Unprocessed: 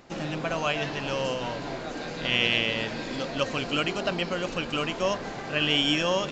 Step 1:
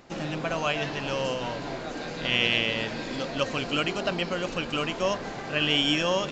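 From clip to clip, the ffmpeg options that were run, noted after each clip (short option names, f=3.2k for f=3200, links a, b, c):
-af anull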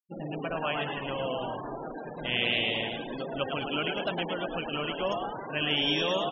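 -filter_complex "[0:a]asplit=9[a][b][c][d][e][f][g][h][i];[b]adelay=108,afreqshift=130,volume=-4.5dB[j];[c]adelay=216,afreqshift=260,volume=-9.5dB[k];[d]adelay=324,afreqshift=390,volume=-14.6dB[l];[e]adelay=432,afreqshift=520,volume=-19.6dB[m];[f]adelay=540,afreqshift=650,volume=-24.6dB[n];[g]adelay=648,afreqshift=780,volume=-29.7dB[o];[h]adelay=756,afreqshift=910,volume=-34.7dB[p];[i]adelay=864,afreqshift=1040,volume=-39.8dB[q];[a][j][k][l][m][n][o][p][q]amix=inputs=9:normalize=0,flanger=delay=7.4:depth=6.4:regen=-88:speed=1.8:shape=triangular,afftfilt=real='re*gte(hypot(re,im),0.0251)':imag='im*gte(hypot(re,im),0.0251)':win_size=1024:overlap=0.75"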